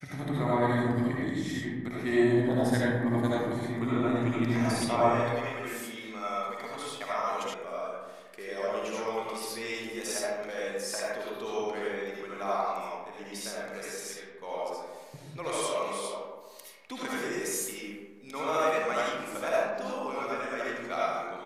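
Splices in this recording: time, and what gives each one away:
7.54 sound cut off

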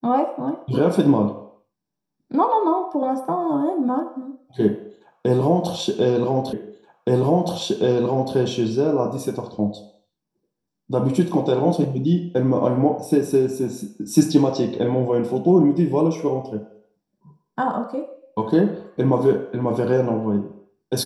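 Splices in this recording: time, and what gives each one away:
6.53 repeat of the last 1.82 s

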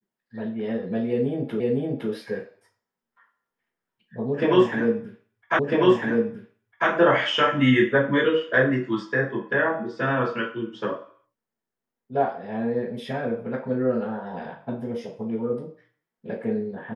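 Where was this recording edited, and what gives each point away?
1.6 repeat of the last 0.51 s
5.59 repeat of the last 1.3 s

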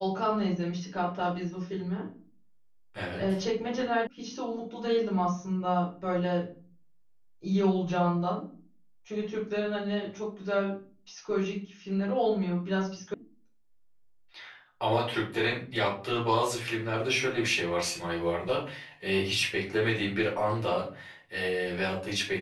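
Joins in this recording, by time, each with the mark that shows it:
4.07 sound cut off
13.14 sound cut off

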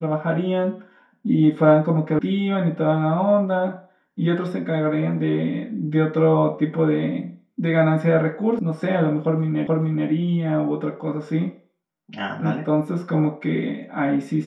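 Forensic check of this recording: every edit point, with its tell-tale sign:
2.19 sound cut off
8.59 sound cut off
9.67 repeat of the last 0.43 s

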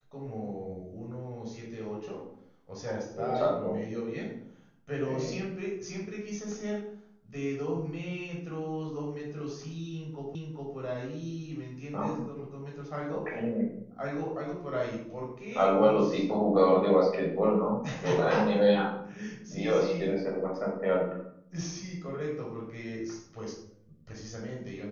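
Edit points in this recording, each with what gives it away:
10.35 repeat of the last 0.41 s

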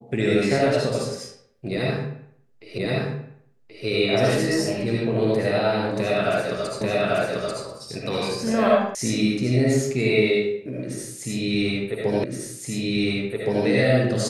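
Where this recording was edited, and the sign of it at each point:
2.78 repeat of the last 1.08 s
6.81 repeat of the last 0.84 s
8.95 sound cut off
12.24 repeat of the last 1.42 s

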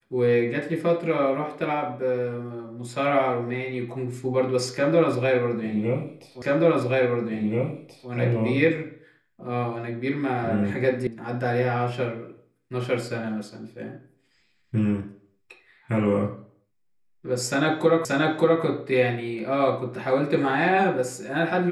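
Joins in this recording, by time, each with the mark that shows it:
6.42 repeat of the last 1.68 s
11.07 sound cut off
18.05 repeat of the last 0.58 s

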